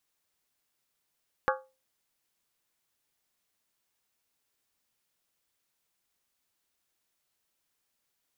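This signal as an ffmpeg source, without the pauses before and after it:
-f lavfi -i "aevalsrc='0.0631*pow(10,-3*t/0.3)*sin(2*PI*525*t)+0.0562*pow(10,-3*t/0.238)*sin(2*PI*836.9*t)+0.0501*pow(10,-3*t/0.205)*sin(2*PI*1121.4*t)+0.0447*pow(10,-3*t/0.198)*sin(2*PI*1205.4*t)+0.0398*pow(10,-3*t/0.184)*sin(2*PI*1392.8*t)+0.0355*pow(10,-3*t/0.176)*sin(2*PI*1532*t)+0.0316*pow(10,-3*t/0.169)*sin(2*PI*1656.9*t)':d=0.63:s=44100"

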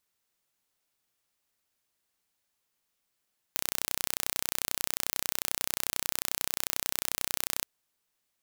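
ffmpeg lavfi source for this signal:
-f lavfi -i "aevalsrc='0.794*eq(mod(n,1413),0)':d=4.08:s=44100"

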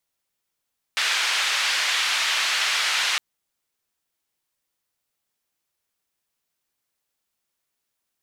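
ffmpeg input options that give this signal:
-f lavfi -i "anoisesrc=c=white:d=2.21:r=44100:seed=1,highpass=f=1400,lowpass=f=3600,volume=-8.6dB"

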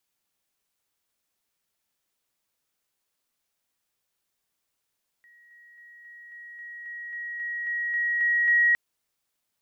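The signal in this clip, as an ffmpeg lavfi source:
-f lavfi -i "aevalsrc='pow(10,(-53+3*floor(t/0.27))/20)*sin(2*PI*1900*t)':d=3.51:s=44100"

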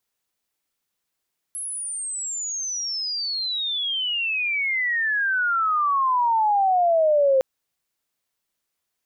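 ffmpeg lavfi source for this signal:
-f lavfi -i "aevalsrc='pow(10,(-28+13.5*t/5.86)/20)*sin(2*PI*11000*5.86/log(520/11000)*(exp(log(520/11000)*t/5.86)-1))':d=5.86:s=44100"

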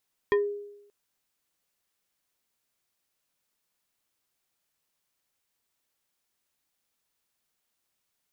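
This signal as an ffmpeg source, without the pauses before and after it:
-f lavfi -i "aevalsrc='0.133*pow(10,-3*t/0.86)*sin(2*PI*409*t+0.93*pow(10,-3*t/0.2)*sin(2*PI*3.48*409*t))':d=0.58:s=44100"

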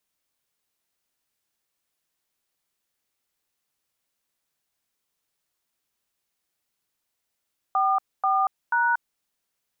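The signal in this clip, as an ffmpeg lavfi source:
-f lavfi -i "aevalsrc='0.0841*clip(min(mod(t,0.486),0.234-mod(t,0.486))/0.002,0,1)*(eq(floor(t/0.486),0)*(sin(2*PI*770*mod(t,0.486))+sin(2*PI*1209*mod(t,0.486)))+eq(floor(t/0.486),1)*(sin(2*PI*770*mod(t,0.486))+sin(2*PI*1209*mod(t,0.486)))+eq(floor(t/0.486),2)*(sin(2*PI*941*mod(t,0.486))+sin(2*PI*1477*mod(t,0.486))))':d=1.458:s=44100"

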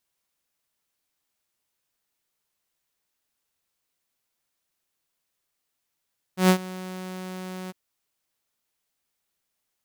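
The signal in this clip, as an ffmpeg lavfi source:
-f lavfi -i "aevalsrc='0.299*(2*mod(185*t,1)-1)':d=1.355:s=44100,afade=t=in:d=0.123,afade=t=out:st=0.123:d=0.083:silence=0.0944,afade=t=out:st=1.33:d=0.025"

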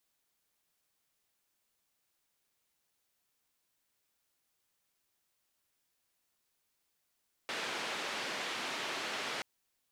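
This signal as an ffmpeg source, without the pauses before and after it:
-f lavfi -i "anoisesrc=c=white:d=1.93:r=44100:seed=1,highpass=f=250,lowpass=f=3200,volume=-25.3dB"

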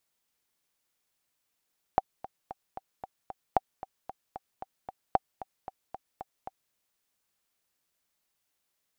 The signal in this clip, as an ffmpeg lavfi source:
-f lavfi -i "aevalsrc='pow(10,(-8.5-17*gte(mod(t,6*60/227),60/227))/20)*sin(2*PI*768*mod(t,60/227))*exp(-6.91*mod(t,60/227)/0.03)':d=4.75:s=44100"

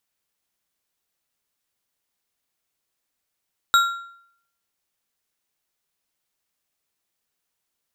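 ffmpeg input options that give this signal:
-f lavfi -i "aevalsrc='0.282*pow(10,-3*t/0.67)*sin(2*PI*1380*t)+0.141*pow(10,-3*t/0.494)*sin(2*PI*3804.7*t)+0.0708*pow(10,-3*t/0.404)*sin(2*PI*7457.5*t)+0.0355*pow(10,-3*t/0.347)*sin(2*PI*12327.5*t)':d=1.55:s=44100"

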